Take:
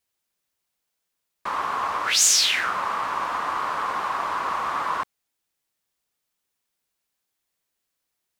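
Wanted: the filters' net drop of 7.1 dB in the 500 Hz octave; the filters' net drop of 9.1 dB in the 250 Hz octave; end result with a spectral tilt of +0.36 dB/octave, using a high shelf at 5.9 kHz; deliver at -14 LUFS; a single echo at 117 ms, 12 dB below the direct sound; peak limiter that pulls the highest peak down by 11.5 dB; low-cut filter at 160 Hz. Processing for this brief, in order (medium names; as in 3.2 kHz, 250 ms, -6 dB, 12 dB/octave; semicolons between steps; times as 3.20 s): high-pass 160 Hz; peaking EQ 250 Hz -8.5 dB; peaking EQ 500 Hz -8 dB; treble shelf 5.9 kHz +8 dB; peak limiter -12.5 dBFS; delay 117 ms -12 dB; trim +10.5 dB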